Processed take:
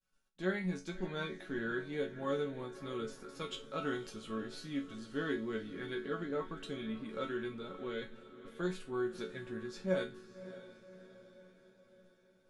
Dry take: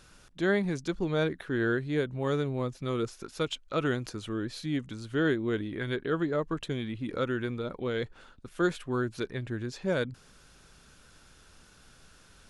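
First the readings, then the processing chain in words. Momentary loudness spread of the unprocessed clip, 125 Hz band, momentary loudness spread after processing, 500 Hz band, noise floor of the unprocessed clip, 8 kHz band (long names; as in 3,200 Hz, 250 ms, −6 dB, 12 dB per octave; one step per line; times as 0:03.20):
7 LU, −12.0 dB, 14 LU, −7.5 dB, −58 dBFS, −8.0 dB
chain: downward expander −43 dBFS
resonators tuned to a chord F#3 minor, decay 0.26 s
feedback delay with all-pass diffusion 591 ms, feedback 53%, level −14.5 dB
level +8 dB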